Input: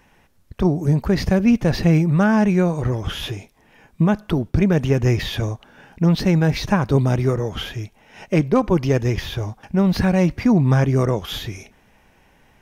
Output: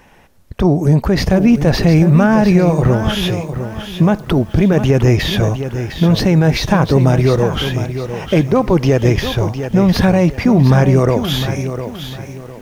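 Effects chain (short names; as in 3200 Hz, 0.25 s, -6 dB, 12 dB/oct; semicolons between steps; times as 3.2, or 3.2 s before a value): bell 610 Hz +3.5 dB 1.2 oct; limiter -11.5 dBFS, peak gain reduction 6.5 dB; lo-fi delay 0.706 s, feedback 35%, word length 8-bit, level -9.5 dB; gain +7.5 dB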